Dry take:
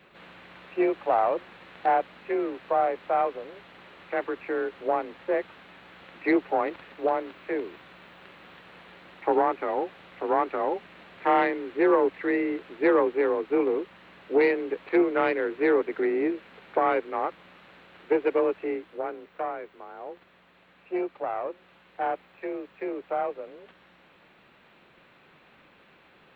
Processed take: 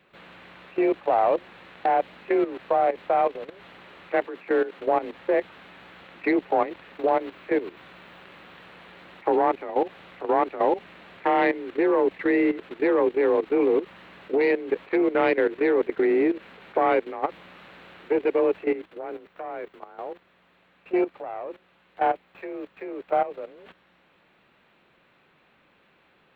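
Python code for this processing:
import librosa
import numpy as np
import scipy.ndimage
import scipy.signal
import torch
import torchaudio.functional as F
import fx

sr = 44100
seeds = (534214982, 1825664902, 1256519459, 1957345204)

y = fx.steep_highpass(x, sr, hz=160.0, slope=36, at=(4.25, 4.8))
y = fx.dynamic_eq(y, sr, hz=1300.0, q=2.0, threshold_db=-40.0, ratio=4.0, max_db=-5)
y = fx.level_steps(y, sr, step_db=14)
y = y * 10.0 ** (8.0 / 20.0)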